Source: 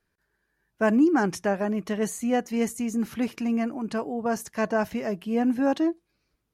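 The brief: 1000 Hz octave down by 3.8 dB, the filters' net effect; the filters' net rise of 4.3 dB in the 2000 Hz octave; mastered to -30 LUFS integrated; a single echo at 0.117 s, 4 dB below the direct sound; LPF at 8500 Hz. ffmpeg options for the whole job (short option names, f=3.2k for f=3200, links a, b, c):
-af "lowpass=8.5k,equalizer=f=1k:t=o:g=-7.5,equalizer=f=2k:t=o:g=9,aecho=1:1:117:0.631,volume=-5dB"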